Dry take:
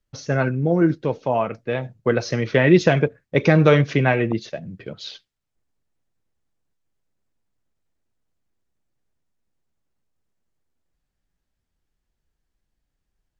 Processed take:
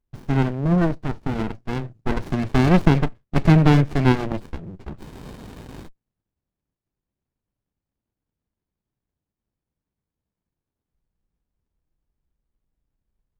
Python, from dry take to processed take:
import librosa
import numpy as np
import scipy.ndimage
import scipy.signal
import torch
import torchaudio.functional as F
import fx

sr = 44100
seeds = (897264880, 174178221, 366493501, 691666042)

y = fx.spec_freeze(x, sr, seeds[0], at_s=5.09, hold_s=0.78)
y = fx.running_max(y, sr, window=65)
y = y * librosa.db_to_amplitude(1.0)